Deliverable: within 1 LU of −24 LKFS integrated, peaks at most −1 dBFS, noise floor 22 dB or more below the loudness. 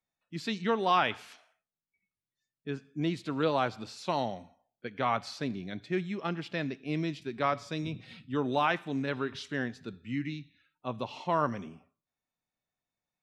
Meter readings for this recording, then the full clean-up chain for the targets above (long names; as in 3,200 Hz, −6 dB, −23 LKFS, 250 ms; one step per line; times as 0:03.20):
integrated loudness −32.5 LKFS; sample peak −14.5 dBFS; target loudness −24.0 LKFS
→ level +8.5 dB